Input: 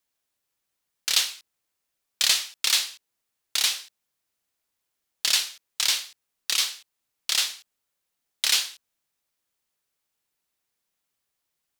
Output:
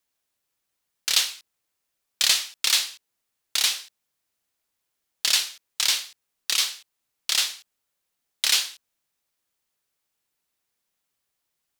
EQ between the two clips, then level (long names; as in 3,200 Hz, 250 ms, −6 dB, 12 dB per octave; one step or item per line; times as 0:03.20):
no EQ move
+1.0 dB